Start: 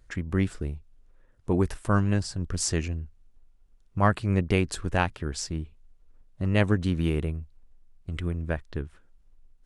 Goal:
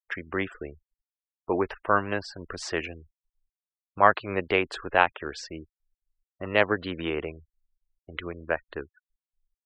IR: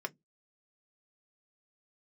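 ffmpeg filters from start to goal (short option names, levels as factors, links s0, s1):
-filter_complex "[0:a]acrossover=split=390 3800:gain=0.0794 1 0.2[s0][s1][s2];[s0][s1][s2]amix=inputs=3:normalize=0,afftfilt=real='re*gte(hypot(re,im),0.00447)':imag='im*gte(hypot(re,im),0.00447)':win_size=1024:overlap=0.75,acrossover=split=6100[s3][s4];[s4]acompressor=threshold=0.00126:ratio=4:attack=1:release=60[s5];[s3][s5]amix=inputs=2:normalize=0,volume=2.11"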